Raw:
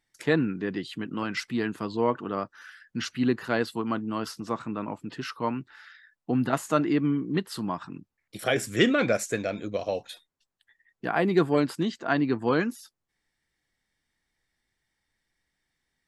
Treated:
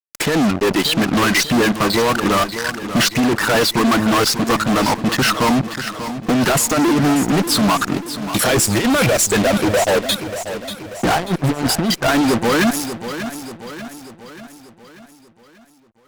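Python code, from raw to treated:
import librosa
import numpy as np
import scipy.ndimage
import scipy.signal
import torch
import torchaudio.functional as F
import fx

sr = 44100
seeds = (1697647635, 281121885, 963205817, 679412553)

y = fx.dereverb_blind(x, sr, rt60_s=1.6)
y = fx.low_shelf(y, sr, hz=490.0, db=10.5, at=(9.91, 11.97))
y = fx.over_compress(y, sr, threshold_db=-27.0, ratio=-0.5)
y = fx.fuzz(y, sr, gain_db=44.0, gate_db=-43.0)
y = fx.echo_feedback(y, sr, ms=588, feedback_pct=52, wet_db=-11.0)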